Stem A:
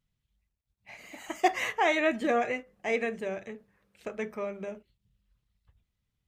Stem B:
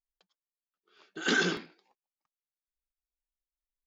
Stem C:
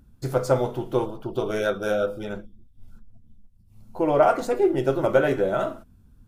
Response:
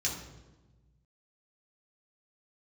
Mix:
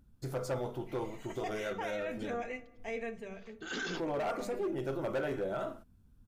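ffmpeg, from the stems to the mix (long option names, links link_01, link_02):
-filter_complex "[0:a]aecho=1:1:4.4:0.52,volume=-11.5dB,asplit=2[link_01][link_02];[link_02]volume=-16.5dB[link_03];[1:a]adelay=2450,volume=-4.5dB[link_04];[2:a]asoftclip=type=hard:threshold=-16.5dB,volume=-9dB,asplit=2[link_05][link_06];[link_06]apad=whole_len=278492[link_07];[link_04][link_07]sidechaincompress=threshold=-48dB:ratio=8:attack=25:release=294[link_08];[3:a]atrim=start_sample=2205[link_09];[link_03][link_09]afir=irnorm=-1:irlink=0[link_10];[link_01][link_08][link_05][link_10]amix=inputs=4:normalize=0,alimiter=level_in=5dB:limit=-24dB:level=0:latency=1:release=14,volume=-5dB"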